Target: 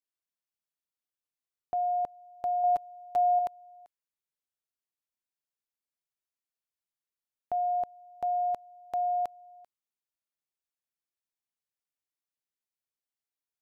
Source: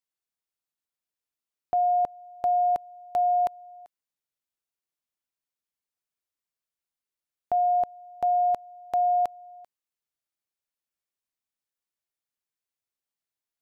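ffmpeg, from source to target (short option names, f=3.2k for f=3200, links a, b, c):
-filter_complex "[0:a]asettb=1/sr,asplit=3[a][b][c];[a]atrim=end=2.634[d];[b]atrim=start=2.63:end=3.39,asetpts=PTS-STARTPTS,afade=t=in:d=0.004:c=qsin,afade=t=out:st=0.756:d=0.004:c=qsin,aecho=1:1:6.9:0.77,atrim=end_sample=33516[e];[c]atrim=start=3.386[f];[d][e]acrossfade=d=0.004:c1=hsin:c2=qsin[g];[g][f]acrossfade=d=0.004:c1=qsin:c2=hsin,volume=-6dB"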